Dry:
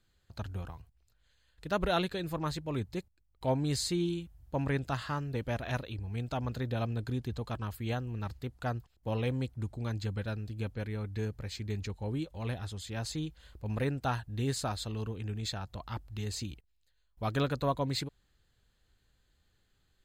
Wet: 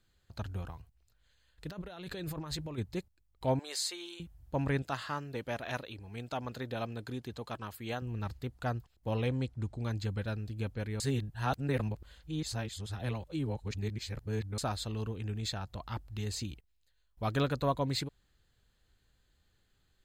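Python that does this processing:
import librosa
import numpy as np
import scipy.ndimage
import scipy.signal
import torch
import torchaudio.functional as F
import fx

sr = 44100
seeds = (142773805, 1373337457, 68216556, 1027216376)

y = fx.over_compress(x, sr, threshold_db=-40.0, ratio=-1.0, at=(1.67, 2.77), fade=0.02)
y = fx.highpass(y, sr, hz=530.0, slope=24, at=(3.59, 4.2))
y = fx.highpass(y, sr, hz=300.0, slope=6, at=(4.82, 8.02))
y = fx.lowpass(y, sr, hz=8400.0, slope=12, at=(9.27, 9.79))
y = fx.edit(y, sr, fx.reverse_span(start_s=11.0, length_s=3.58), tone=tone)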